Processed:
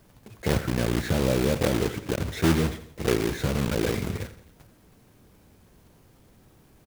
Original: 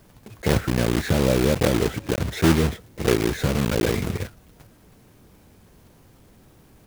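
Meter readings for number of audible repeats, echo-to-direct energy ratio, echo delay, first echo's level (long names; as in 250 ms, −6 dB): 3, −13.0 dB, 85 ms, −14.0 dB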